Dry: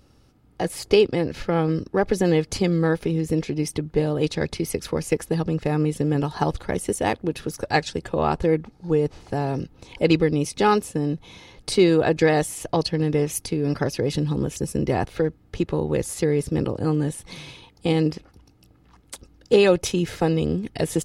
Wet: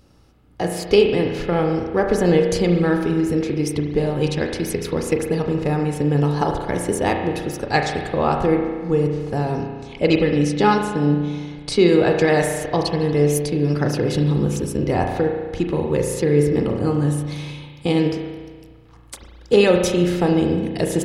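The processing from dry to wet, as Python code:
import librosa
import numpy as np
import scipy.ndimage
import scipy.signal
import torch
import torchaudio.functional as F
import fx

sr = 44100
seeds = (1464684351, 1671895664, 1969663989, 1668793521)

y = fx.lowpass(x, sr, hz=8000.0, slope=12, at=(9.57, 11.88))
y = fx.rev_spring(y, sr, rt60_s=1.5, pass_ms=(34,), chirp_ms=45, drr_db=2.5)
y = y * librosa.db_to_amplitude(1.5)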